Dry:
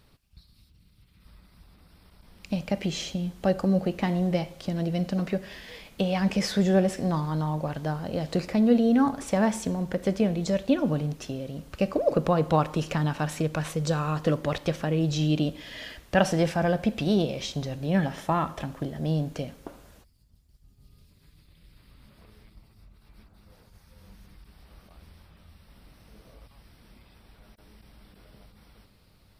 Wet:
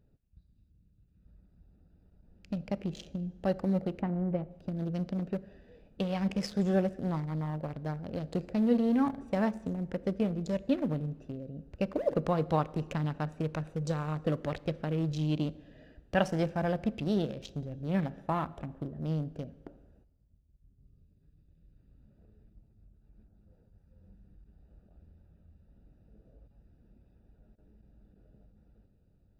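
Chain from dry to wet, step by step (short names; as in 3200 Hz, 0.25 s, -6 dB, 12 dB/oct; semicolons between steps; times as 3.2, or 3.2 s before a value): Wiener smoothing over 41 samples; 4.01–4.51 LPF 1300 Hz 12 dB/oct; plate-style reverb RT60 1.4 s, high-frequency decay 0.9×, DRR 19.5 dB; gain -5.5 dB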